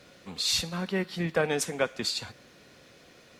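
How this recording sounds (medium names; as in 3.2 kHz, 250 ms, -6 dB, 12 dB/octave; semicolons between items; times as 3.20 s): a quantiser's noise floor 12-bit, dither none; MP3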